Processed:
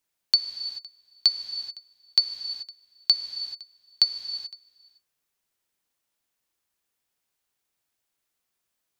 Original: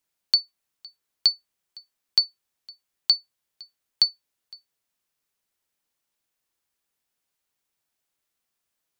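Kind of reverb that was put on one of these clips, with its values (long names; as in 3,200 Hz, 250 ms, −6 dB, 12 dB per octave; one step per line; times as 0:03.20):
reverb whose tail is shaped and stops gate 460 ms flat, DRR 7.5 dB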